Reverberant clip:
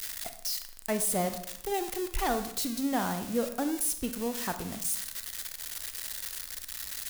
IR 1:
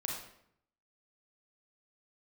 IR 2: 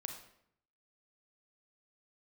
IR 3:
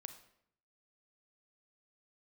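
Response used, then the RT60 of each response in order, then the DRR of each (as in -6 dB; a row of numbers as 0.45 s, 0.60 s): 3; 0.70 s, 0.70 s, 0.70 s; -1.5 dB, 3.5 dB, 8.0 dB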